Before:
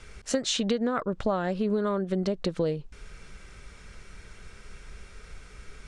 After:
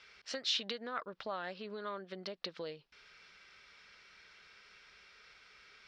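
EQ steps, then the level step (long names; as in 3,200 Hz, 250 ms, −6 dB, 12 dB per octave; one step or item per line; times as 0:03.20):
resonant band-pass 5,400 Hz, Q 3.1
high-frequency loss of the air 430 metres
+17.0 dB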